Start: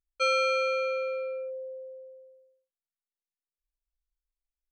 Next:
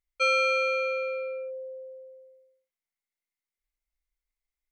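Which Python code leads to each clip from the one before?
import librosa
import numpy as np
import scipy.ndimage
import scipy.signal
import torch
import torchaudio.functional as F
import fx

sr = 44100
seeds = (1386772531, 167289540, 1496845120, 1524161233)

y = fx.peak_eq(x, sr, hz=2100.0, db=15.0, octaves=0.21)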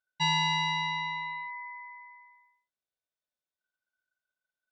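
y = scipy.signal.sosfilt(scipy.signal.butter(2, 5300.0, 'lowpass', fs=sr, output='sos'), x)
y = y * np.sin(2.0 * np.pi * 1500.0 * np.arange(len(y)) / sr)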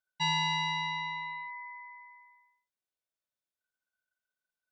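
y = fx.hum_notches(x, sr, base_hz=50, count=3)
y = y * librosa.db_to_amplitude(-2.5)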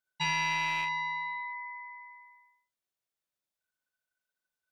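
y = fx.rattle_buzz(x, sr, strikes_db=-44.0, level_db=-27.0)
y = fx.room_early_taps(y, sr, ms=(14, 41), db=(-11.0, -5.0))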